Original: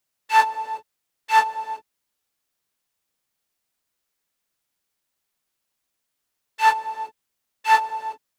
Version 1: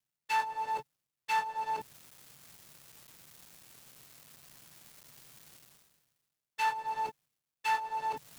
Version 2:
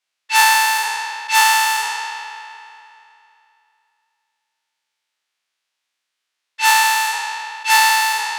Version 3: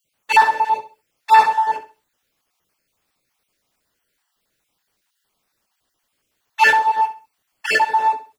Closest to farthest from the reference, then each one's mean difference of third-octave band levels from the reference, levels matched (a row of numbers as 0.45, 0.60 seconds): 3, 1, 2; 4.0, 6.5, 12.5 decibels